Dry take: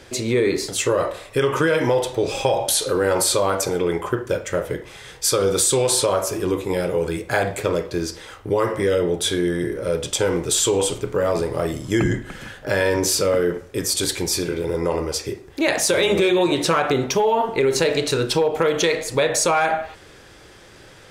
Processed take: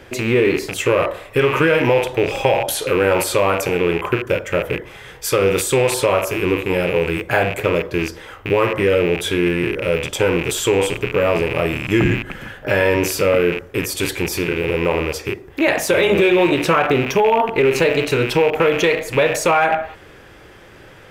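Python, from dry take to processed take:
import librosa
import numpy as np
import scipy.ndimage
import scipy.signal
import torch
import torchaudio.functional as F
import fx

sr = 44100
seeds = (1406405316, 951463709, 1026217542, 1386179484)

y = fx.rattle_buzz(x, sr, strikes_db=-34.0, level_db=-16.0)
y = fx.band_shelf(y, sr, hz=6100.0, db=-9.0, octaves=1.7)
y = F.gain(torch.from_numpy(y), 3.5).numpy()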